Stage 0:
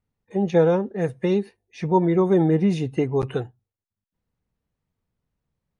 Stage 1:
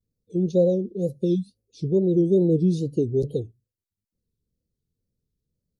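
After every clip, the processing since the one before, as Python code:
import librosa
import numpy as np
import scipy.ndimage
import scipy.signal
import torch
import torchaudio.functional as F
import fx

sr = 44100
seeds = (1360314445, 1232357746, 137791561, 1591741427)

y = scipy.signal.sosfilt(scipy.signal.ellip(3, 1.0, 50, [480.0, 4100.0], 'bandstop', fs=sr, output='sos'), x)
y = fx.spec_repair(y, sr, seeds[0], start_s=1.38, length_s=0.22, low_hz=280.0, high_hz=2700.0, source='after')
y = fx.wow_flutter(y, sr, seeds[1], rate_hz=2.1, depth_cents=150.0)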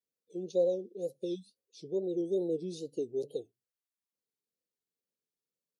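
y = scipy.signal.sosfilt(scipy.signal.butter(2, 520.0, 'highpass', fs=sr, output='sos'), x)
y = y * 10.0 ** (-4.5 / 20.0)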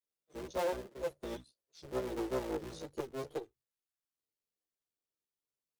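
y = fx.cycle_switch(x, sr, every=3, mode='muted')
y = fx.chorus_voices(y, sr, voices=6, hz=0.61, base_ms=14, depth_ms=1.8, mix_pct=50)
y = fx.transformer_sat(y, sr, knee_hz=510.0)
y = y * 10.0 ** (1.0 / 20.0)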